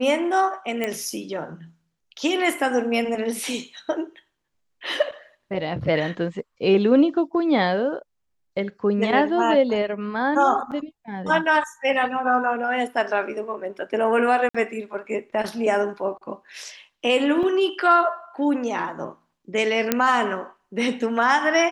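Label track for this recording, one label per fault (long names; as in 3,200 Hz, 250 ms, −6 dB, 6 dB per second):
0.840000	0.840000	click −12 dBFS
10.710000	10.720000	drop-out 7.1 ms
14.490000	14.540000	drop-out 55 ms
17.430000	17.430000	drop-out 2.8 ms
19.920000	19.920000	click −3 dBFS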